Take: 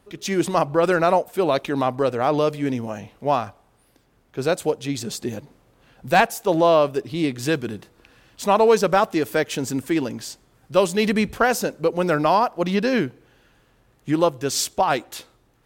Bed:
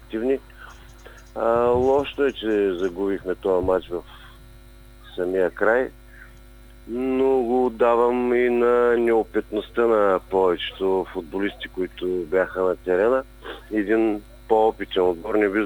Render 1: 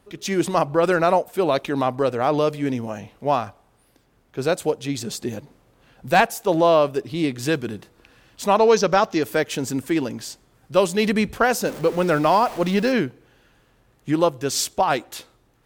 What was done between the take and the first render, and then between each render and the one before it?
8.57–9.23 s: resonant high shelf 7.3 kHz -7.5 dB, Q 3; 11.65–12.92 s: jump at every zero crossing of -31 dBFS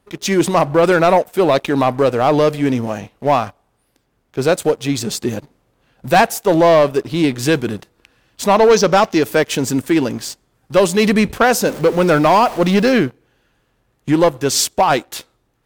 waveshaping leveller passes 2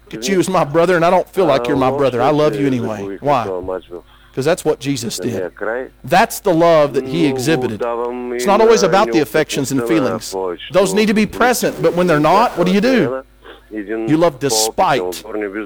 add bed -2 dB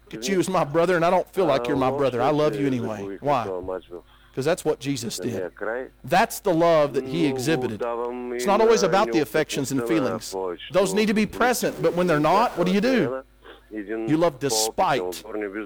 trim -7.5 dB

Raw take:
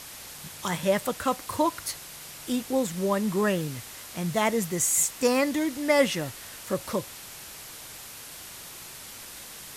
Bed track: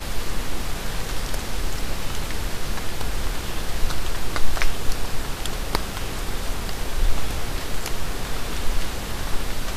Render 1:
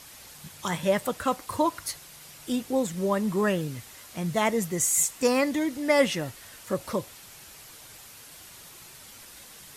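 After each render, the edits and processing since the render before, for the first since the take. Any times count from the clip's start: noise reduction 6 dB, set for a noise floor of -43 dBFS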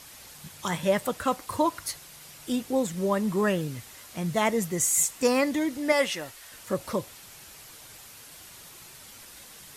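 5.92–6.52 s: peaking EQ 130 Hz -13 dB 2.8 oct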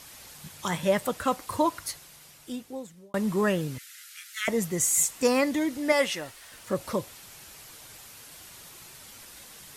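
1.69–3.14 s: fade out; 3.78–4.48 s: steep high-pass 1.3 kHz 96 dB/octave; 6.19–6.76 s: decimation joined by straight lines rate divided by 2×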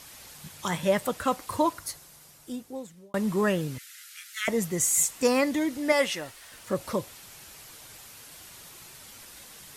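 1.73–2.75 s: peaking EQ 2.7 kHz -5.5 dB 1.5 oct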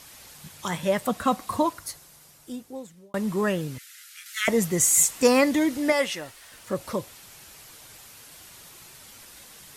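1.07–1.63 s: small resonant body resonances 210/710/1100/3800 Hz, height 10 dB; 4.26–5.90 s: gain +4.5 dB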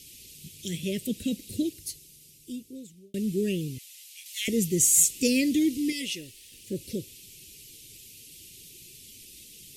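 elliptic band-stop 400–2600 Hz, stop band 80 dB; 5.74–6.03 s: time-frequency box 500–1800 Hz -17 dB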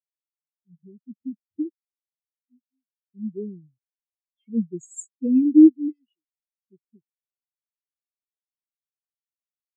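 level rider gain up to 4 dB; spectral contrast expander 4:1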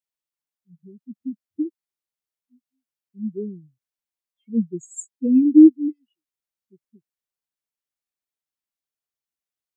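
trim +2.5 dB; peak limiter -3 dBFS, peak gain reduction 1.5 dB

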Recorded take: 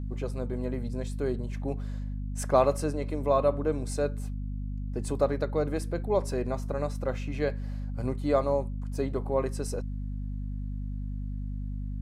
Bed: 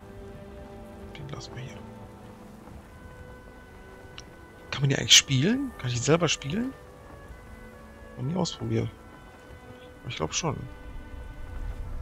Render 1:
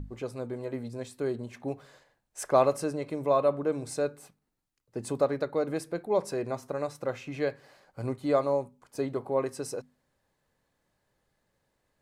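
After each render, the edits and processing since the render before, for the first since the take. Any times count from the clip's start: hum notches 50/100/150/200/250 Hz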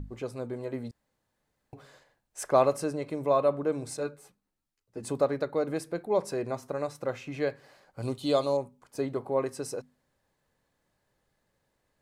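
0.91–1.73 s: room tone; 3.97–5.03 s: three-phase chorus; 8.02–8.57 s: resonant high shelf 2.5 kHz +8 dB, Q 3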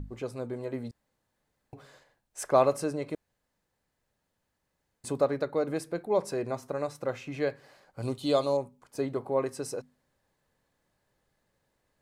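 3.15–5.04 s: room tone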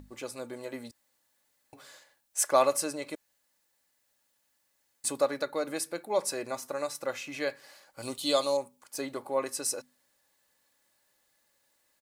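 tilt EQ +3.5 dB/octave; comb 3.5 ms, depth 34%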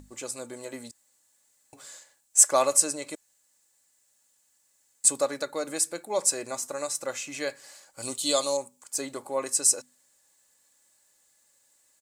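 peaking EQ 7.6 kHz +14.5 dB 0.77 oct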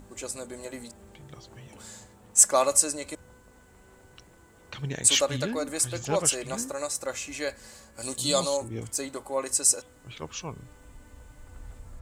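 add bed -8.5 dB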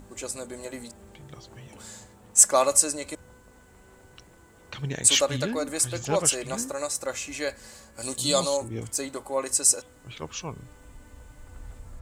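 trim +1.5 dB

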